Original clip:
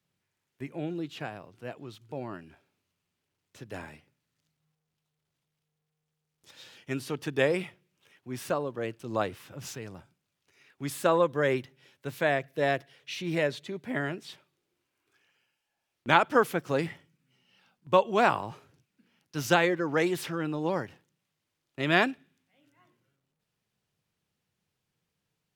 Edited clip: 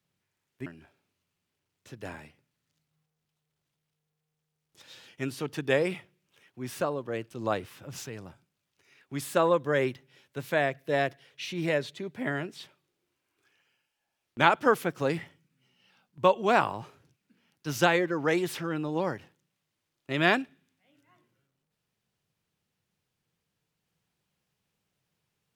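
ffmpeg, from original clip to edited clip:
-filter_complex "[0:a]asplit=2[a][b];[a]atrim=end=0.662[c];[b]atrim=start=2.348[d];[c][d]acrossfade=d=0.004:c1=hsin:c2=hsin"

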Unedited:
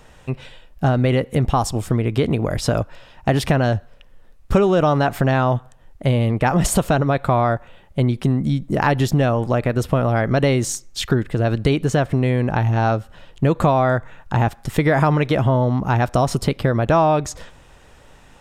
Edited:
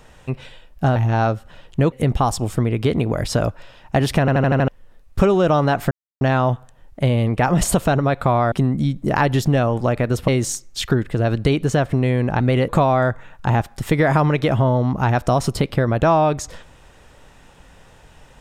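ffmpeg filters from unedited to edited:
-filter_complex "[0:a]asplit=14[a][b][c][d][e][f][g][h][i][j][k][l][m][n];[a]atrim=end=0.962[o];[b]atrim=start=12.598:end=13.562[p];[c]atrim=start=1.248:end=3.612[q];[d]atrim=start=3.528:end=3.612[r];[e]atrim=start=3.528:end=3.612[s];[f]atrim=start=3.528:end=3.612[t];[g]atrim=start=3.528:end=3.612[u];[h]atrim=start=3.528:end=3.612[v];[i]atrim=start=4.008:end=5.24,asetpts=PTS-STARTPTS,afade=t=out:st=1.228:d=0.004:c=hsin,apad=pad_dur=0.3[w];[j]atrim=start=5.24:end=7.552,asetpts=PTS-STARTPTS,afade=t=in:d=0.004:c=hsin[x];[k]atrim=start=8.178:end=9.942[y];[l]atrim=start=10.478:end=12.602[z];[m]atrim=start=0.958:end=1.252[aa];[n]atrim=start=13.558[ab];[o][p]acrossfade=d=0.004:c1=hsin:c2=hsin[ac];[ac][q]acrossfade=d=0.004:c1=hsin:c2=hsin[ad];[ad][r]acrossfade=d=0.004:c1=hsin:c2=hsin[ae];[ae][s]acrossfade=d=0.004:c1=hsin:c2=hsin[af];[af][t]acrossfade=d=0.004:c1=hsin:c2=hsin[ag];[ag][u]acrossfade=d=0.004:c1=hsin:c2=hsin[ah];[ah][v]acrossfade=d=0.004:c1=hsin:c2=hsin[ai];[w][x]concat=n=2:v=0:a=1[aj];[ai][aj]acrossfade=d=0.004:c1=hsin:c2=hsin[ak];[ak][y]acrossfade=d=0.004:c1=hsin:c2=hsin[al];[al][z]acrossfade=d=0.004:c1=hsin:c2=hsin[am];[am][aa]acrossfade=d=0.004:c1=hsin:c2=hsin[an];[an][ab]acrossfade=d=0.004:c1=hsin:c2=hsin"

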